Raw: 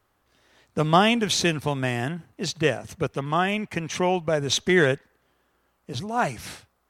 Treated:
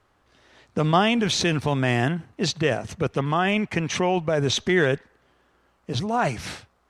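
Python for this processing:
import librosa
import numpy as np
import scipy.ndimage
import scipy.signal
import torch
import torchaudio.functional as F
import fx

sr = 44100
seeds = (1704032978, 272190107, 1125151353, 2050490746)

p1 = fx.high_shelf(x, sr, hz=10000.0, db=6.0)
p2 = fx.over_compress(p1, sr, threshold_db=-26.0, ratio=-0.5)
p3 = p1 + (p2 * librosa.db_to_amplitude(-2.0))
p4 = fx.air_absorb(p3, sr, metres=71.0)
y = p4 * librosa.db_to_amplitude(-1.5)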